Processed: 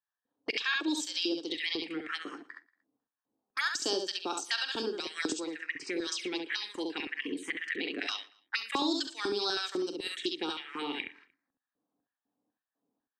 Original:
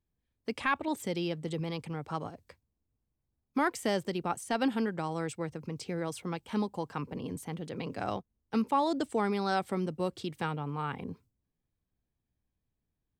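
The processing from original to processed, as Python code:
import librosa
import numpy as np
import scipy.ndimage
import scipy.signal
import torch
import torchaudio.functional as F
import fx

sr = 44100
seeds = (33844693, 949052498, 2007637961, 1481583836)

p1 = fx.notch(x, sr, hz=620.0, q=12.0)
p2 = fx.env_lowpass(p1, sr, base_hz=500.0, full_db=-29.5)
p3 = fx.weighting(p2, sr, curve='ITU-R 468')
p4 = fx.filter_lfo_highpass(p3, sr, shape='square', hz=2.0, low_hz=300.0, high_hz=1800.0, q=7.0)
p5 = fx.small_body(p4, sr, hz=(390.0, 3800.0), ring_ms=35, db=7)
p6 = p5 + fx.room_early_taps(p5, sr, ms=(44, 68), db=(-12.0, -4.5), dry=0)
p7 = fx.harmonic_tremolo(p6, sr, hz=4.5, depth_pct=50, crossover_hz=720.0)
p8 = fx.env_phaser(p7, sr, low_hz=360.0, high_hz=2000.0, full_db=-29.5)
p9 = fx.echo_feedback(p8, sr, ms=116, feedback_pct=33, wet_db=-24)
p10 = fx.dynamic_eq(p9, sr, hz=6100.0, q=0.78, threshold_db=-46.0, ratio=4.0, max_db=4)
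y = fx.band_squash(p10, sr, depth_pct=70)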